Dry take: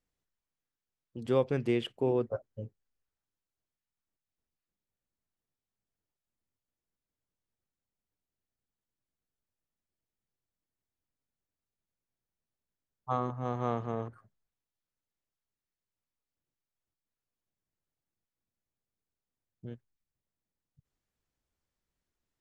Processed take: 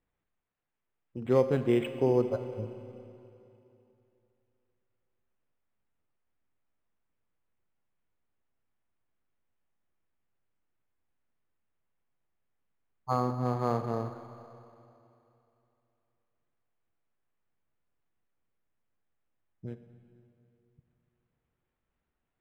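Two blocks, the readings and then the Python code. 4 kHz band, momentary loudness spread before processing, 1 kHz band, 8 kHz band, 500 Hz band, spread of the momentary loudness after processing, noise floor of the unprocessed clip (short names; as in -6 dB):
-3.5 dB, 18 LU, +2.5 dB, n/a, +3.5 dB, 21 LU, under -85 dBFS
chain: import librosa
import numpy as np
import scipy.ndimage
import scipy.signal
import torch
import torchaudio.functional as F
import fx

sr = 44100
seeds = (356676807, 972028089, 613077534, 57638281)

y = fx.rev_schroeder(x, sr, rt60_s=2.9, comb_ms=32, drr_db=9.5)
y = np.interp(np.arange(len(y)), np.arange(len(y))[::8], y[::8])
y = F.gain(torch.from_numpy(y), 3.0).numpy()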